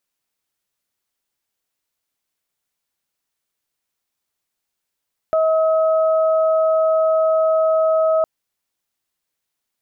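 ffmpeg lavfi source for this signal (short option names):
-f lavfi -i "aevalsrc='0.211*sin(2*PI*639*t)+0.0631*sin(2*PI*1278*t)':d=2.91:s=44100"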